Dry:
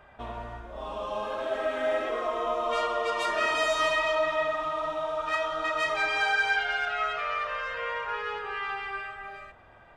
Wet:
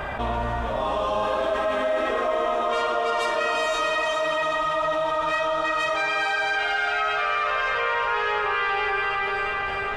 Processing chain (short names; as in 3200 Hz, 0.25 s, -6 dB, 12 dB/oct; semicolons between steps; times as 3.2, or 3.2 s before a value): vocal rider within 4 dB; diffused feedback echo 0.467 s, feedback 45%, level -6 dB; on a send at -13.5 dB: reverb RT60 4.0 s, pre-delay 8 ms; on the sum: fast leveller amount 70%